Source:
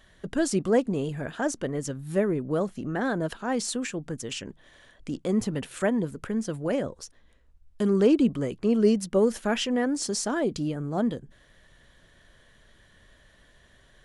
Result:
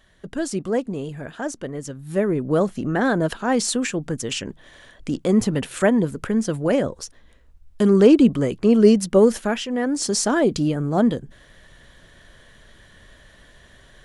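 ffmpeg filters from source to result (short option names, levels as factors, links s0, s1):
-af "volume=7.08,afade=t=in:st=1.98:d=0.6:silence=0.398107,afade=t=out:st=9.31:d=0.32:silence=0.354813,afade=t=in:st=9.63:d=0.6:silence=0.334965"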